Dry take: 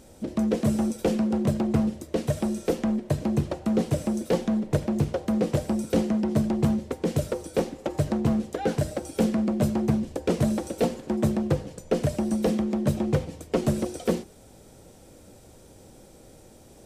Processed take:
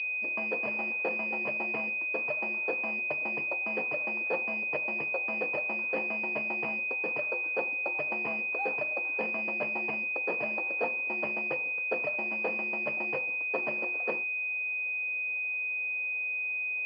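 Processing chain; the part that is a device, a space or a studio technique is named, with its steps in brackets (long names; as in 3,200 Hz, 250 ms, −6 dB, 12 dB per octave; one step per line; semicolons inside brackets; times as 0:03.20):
toy sound module (linearly interpolated sample-rate reduction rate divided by 8×; switching amplifier with a slow clock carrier 2,500 Hz; loudspeaker in its box 750–4,900 Hz, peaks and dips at 950 Hz +4 dB, 1,500 Hz −4 dB, 2,900 Hz +5 dB, 4,500 Hz +6 dB)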